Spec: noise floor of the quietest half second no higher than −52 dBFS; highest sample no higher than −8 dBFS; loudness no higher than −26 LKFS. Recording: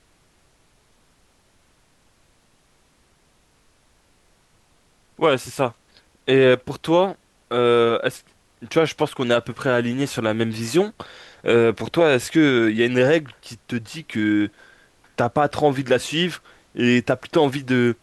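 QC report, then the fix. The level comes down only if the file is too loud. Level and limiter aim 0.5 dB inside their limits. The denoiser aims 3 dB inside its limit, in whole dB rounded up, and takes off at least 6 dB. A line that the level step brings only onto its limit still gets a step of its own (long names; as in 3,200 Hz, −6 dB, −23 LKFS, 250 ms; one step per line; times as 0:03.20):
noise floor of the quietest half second −60 dBFS: in spec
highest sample −6.0 dBFS: out of spec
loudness −20.5 LKFS: out of spec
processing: level −6 dB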